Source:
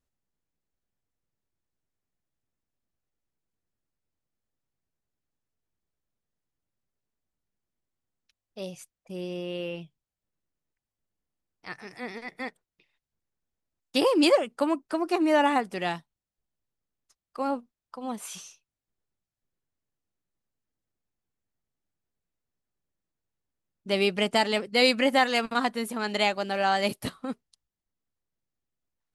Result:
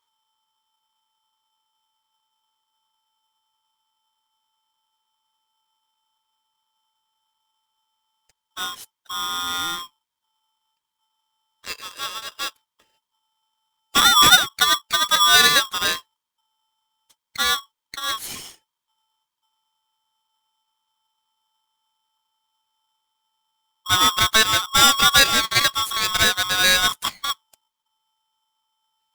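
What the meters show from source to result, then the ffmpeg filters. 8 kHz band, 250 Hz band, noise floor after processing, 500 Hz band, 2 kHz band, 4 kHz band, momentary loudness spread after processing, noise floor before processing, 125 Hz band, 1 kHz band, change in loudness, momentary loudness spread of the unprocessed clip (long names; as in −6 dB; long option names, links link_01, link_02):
+21.5 dB, −8.0 dB, −83 dBFS, −7.0 dB, +11.0 dB, +15.0 dB, 18 LU, below −85 dBFS, +6.0 dB, +7.5 dB, +9.5 dB, 18 LU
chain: -af "afftfilt=real='real(if(lt(b,920),b+92*(1-2*mod(floor(b/92),2)),b),0)':imag='imag(if(lt(b,920),b+92*(1-2*mod(floor(b/92),2)),b),0)':win_size=2048:overlap=0.75,highpass=frequency=660:width=0.5412,highpass=frequency=660:width=1.3066,aeval=exprs='val(0)*sgn(sin(2*PI*1100*n/s))':channel_layout=same,volume=7.5dB"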